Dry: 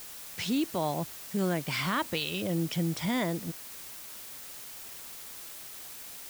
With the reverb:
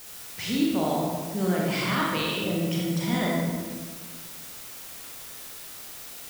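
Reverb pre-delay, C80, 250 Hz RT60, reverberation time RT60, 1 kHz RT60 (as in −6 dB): 30 ms, 1.5 dB, 1.8 s, 1.5 s, 1.4 s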